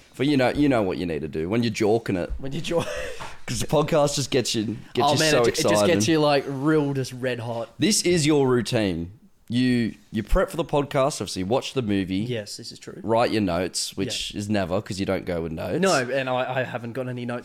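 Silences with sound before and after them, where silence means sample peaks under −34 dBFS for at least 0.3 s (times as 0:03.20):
0:09.08–0:09.48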